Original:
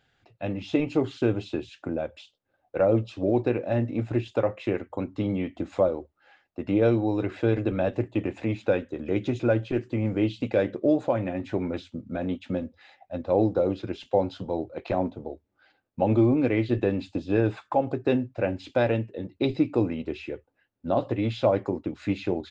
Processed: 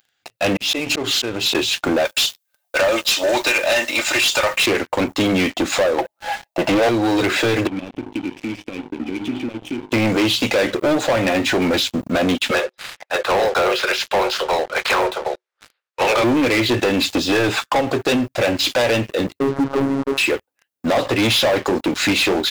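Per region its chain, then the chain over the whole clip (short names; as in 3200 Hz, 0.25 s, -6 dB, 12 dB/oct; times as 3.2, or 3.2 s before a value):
0.56–1.55 auto swell 0.202 s + compressor 10:1, threshold -36 dBFS
2.05–4.66 HPF 770 Hz + high shelf 3000 Hz +11.5 dB + comb 3.3 ms, depth 50%
5.98–6.89 band shelf 720 Hz +13.5 dB 1 oct + comb 6 ms, depth 63%
7.67–9.92 de-hum 51.24 Hz, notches 10 + compressor 5:1, threshold -30 dBFS + vocal tract filter i
12.5–16.23 spectral limiter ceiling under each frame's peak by 19 dB + rippled Chebyshev high-pass 360 Hz, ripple 6 dB + air absorption 100 m
19.39–20.18 level-crossing sampler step -37 dBFS + LPF 1300 Hz 24 dB/oct + robotiser 137 Hz
whole clip: tilt +4 dB/oct; compressor 2.5:1, threshold -31 dBFS; sample leveller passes 5; gain +5 dB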